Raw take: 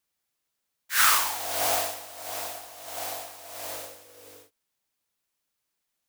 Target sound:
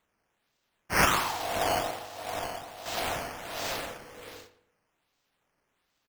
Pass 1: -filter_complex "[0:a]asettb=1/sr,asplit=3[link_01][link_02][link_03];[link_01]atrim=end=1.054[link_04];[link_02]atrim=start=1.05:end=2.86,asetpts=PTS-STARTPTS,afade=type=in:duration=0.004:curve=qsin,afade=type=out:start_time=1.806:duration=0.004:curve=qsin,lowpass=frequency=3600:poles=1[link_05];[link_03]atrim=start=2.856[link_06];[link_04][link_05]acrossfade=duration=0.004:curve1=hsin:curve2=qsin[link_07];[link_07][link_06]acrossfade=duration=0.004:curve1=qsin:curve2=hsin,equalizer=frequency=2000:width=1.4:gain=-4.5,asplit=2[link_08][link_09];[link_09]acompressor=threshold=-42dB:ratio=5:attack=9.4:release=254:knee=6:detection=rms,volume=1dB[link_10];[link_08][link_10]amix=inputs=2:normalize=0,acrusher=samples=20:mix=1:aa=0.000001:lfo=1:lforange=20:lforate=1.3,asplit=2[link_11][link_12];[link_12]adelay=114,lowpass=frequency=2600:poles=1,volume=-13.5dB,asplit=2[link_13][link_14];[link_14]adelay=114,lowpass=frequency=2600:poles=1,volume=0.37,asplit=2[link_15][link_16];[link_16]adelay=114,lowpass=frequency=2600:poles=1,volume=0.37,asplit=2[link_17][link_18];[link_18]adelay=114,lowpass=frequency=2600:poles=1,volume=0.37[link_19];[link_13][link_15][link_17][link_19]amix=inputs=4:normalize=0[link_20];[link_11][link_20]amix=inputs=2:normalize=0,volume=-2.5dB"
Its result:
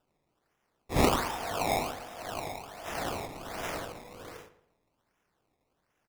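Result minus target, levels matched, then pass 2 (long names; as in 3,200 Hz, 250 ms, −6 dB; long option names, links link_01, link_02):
downward compressor: peak gain reduction +8.5 dB; sample-and-hold swept by an LFO: distortion +12 dB
-filter_complex "[0:a]asettb=1/sr,asplit=3[link_01][link_02][link_03];[link_01]atrim=end=1.054[link_04];[link_02]atrim=start=1.05:end=2.86,asetpts=PTS-STARTPTS,afade=type=in:duration=0.004:curve=qsin,afade=type=out:start_time=1.806:duration=0.004:curve=qsin,lowpass=frequency=3600:poles=1[link_05];[link_03]atrim=start=2.856[link_06];[link_04][link_05]acrossfade=duration=0.004:curve1=hsin:curve2=qsin[link_07];[link_07][link_06]acrossfade=duration=0.004:curve1=qsin:curve2=hsin,equalizer=frequency=2000:width=1.4:gain=-4.5,asplit=2[link_08][link_09];[link_09]acompressor=threshold=-31.5dB:ratio=5:attack=9.4:release=254:knee=6:detection=rms,volume=1dB[link_10];[link_08][link_10]amix=inputs=2:normalize=0,acrusher=samples=8:mix=1:aa=0.000001:lfo=1:lforange=8:lforate=1.3,asplit=2[link_11][link_12];[link_12]adelay=114,lowpass=frequency=2600:poles=1,volume=-13.5dB,asplit=2[link_13][link_14];[link_14]adelay=114,lowpass=frequency=2600:poles=1,volume=0.37,asplit=2[link_15][link_16];[link_16]adelay=114,lowpass=frequency=2600:poles=1,volume=0.37,asplit=2[link_17][link_18];[link_18]adelay=114,lowpass=frequency=2600:poles=1,volume=0.37[link_19];[link_13][link_15][link_17][link_19]amix=inputs=4:normalize=0[link_20];[link_11][link_20]amix=inputs=2:normalize=0,volume=-2.5dB"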